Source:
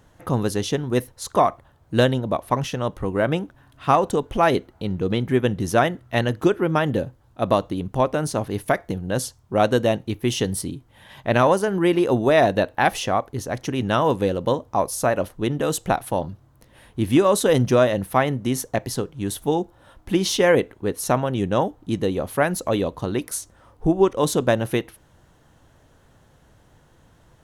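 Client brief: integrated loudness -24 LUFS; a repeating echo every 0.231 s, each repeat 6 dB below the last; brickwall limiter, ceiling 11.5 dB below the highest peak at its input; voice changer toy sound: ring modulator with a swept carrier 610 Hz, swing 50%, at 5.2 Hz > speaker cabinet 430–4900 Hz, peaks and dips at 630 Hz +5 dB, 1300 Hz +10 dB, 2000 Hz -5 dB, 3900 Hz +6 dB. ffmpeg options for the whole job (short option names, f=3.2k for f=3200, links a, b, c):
-af "alimiter=limit=-17dB:level=0:latency=1,aecho=1:1:231|462|693|924|1155|1386:0.501|0.251|0.125|0.0626|0.0313|0.0157,aeval=exprs='val(0)*sin(2*PI*610*n/s+610*0.5/5.2*sin(2*PI*5.2*n/s))':c=same,highpass=430,equalizer=f=630:t=q:w=4:g=5,equalizer=f=1.3k:t=q:w=4:g=10,equalizer=f=2k:t=q:w=4:g=-5,equalizer=f=3.9k:t=q:w=4:g=6,lowpass=f=4.9k:w=0.5412,lowpass=f=4.9k:w=1.3066,volume=3.5dB"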